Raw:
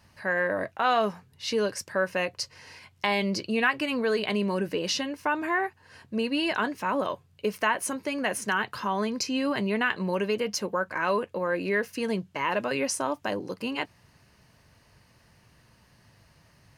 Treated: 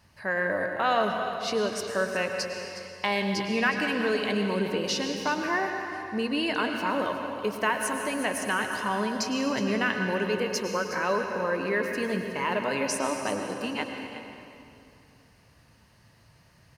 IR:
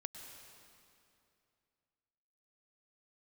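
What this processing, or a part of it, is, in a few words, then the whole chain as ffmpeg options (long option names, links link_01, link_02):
cave: -filter_complex "[0:a]aecho=1:1:365:0.224[link_01];[1:a]atrim=start_sample=2205[link_02];[link_01][link_02]afir=irnorm=-1:irlink=0,volume=3dB"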